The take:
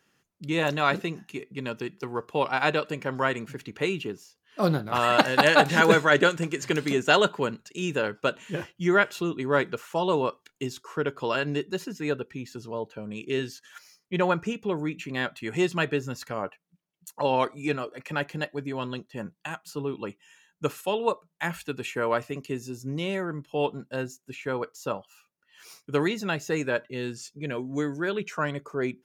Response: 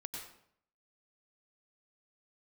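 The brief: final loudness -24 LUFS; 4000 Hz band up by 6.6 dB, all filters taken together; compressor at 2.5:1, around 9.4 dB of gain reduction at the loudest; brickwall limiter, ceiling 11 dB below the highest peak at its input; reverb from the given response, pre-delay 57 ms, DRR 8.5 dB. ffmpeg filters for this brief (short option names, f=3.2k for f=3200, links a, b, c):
-filter_complex "[0:a]equalizer=f=4k:t=o:g=8.5,acompressor=threshold=-26dB:ratio=2.5,alimiter=limit=-19.5dB:level=0:latency=1,asplit=2[a][b];[1:a]atrim=start_sample=2205,adelay=57[c];[b][c]afir=irnorm=-1:irlink=0,volume=-6.5dB[d];[a][d]amix=inputs=2:normalize=0,volume=8dB"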